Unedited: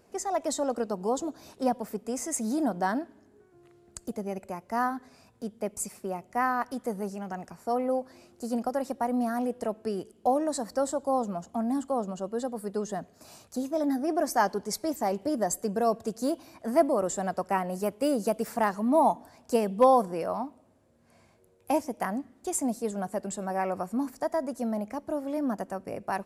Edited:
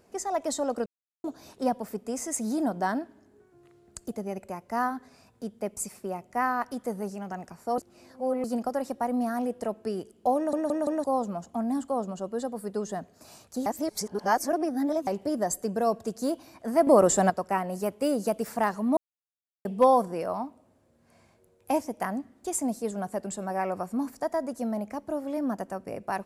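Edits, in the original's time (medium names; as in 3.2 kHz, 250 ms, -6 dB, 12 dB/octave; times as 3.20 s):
0.86–1.24 s: mute
7.78–8.44 s: reverse
10.36 s: stutter in place 0.17 s, 4 plays
13.66–15.07 s: reverse
16.87–17.30 s: gain +8.5 dB
18.97–19.65 s: mute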